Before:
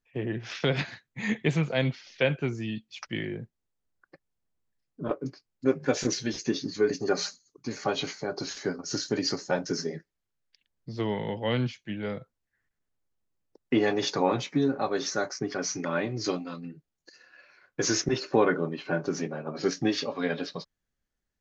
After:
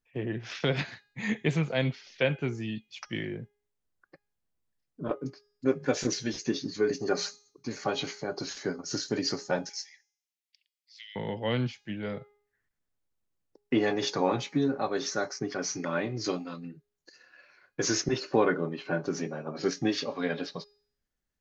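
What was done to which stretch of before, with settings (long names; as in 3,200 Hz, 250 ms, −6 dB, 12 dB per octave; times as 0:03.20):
0:09.69–0:11.16: Butterworth high-pass 2,000 Hz 48 dB per octave
whole clip: hum removal 412.4 Hz, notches 31; level −1.5 dB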